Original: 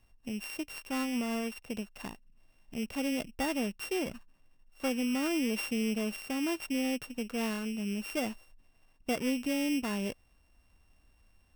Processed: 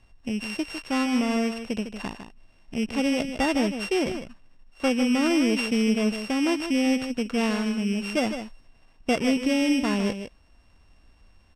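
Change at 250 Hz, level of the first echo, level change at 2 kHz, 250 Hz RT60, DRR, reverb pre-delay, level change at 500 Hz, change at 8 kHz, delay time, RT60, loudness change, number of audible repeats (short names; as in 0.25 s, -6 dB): +9.0 dB, -9.0 dB, +8.0 dB, none, none, none, +9.0 dB, +4.0 dB, 0.154 s, none, +8.5 dB, 1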